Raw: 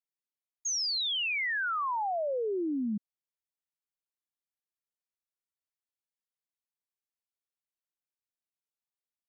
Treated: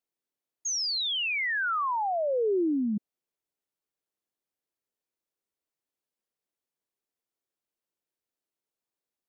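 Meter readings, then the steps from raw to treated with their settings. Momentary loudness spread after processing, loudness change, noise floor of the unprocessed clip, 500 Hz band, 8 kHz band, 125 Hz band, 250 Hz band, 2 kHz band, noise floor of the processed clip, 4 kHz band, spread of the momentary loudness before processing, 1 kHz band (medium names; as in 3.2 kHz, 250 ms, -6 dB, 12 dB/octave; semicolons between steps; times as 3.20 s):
5 LU, +2.5 dB, under -85 dBFS, +5.0 dB, no reading, +3.5 dB, +4.5 dB, +2.5 dB, under -85 dBFS, +1.5 dB, 7 LU, +3.0 dB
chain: peaking EQ 380 Hz +10.5 dB 1.9 oct; in parallel at -3 dB: compressor with a negative ratio -29 dBFS, ratio -0.5; on the sum: trim -5 dB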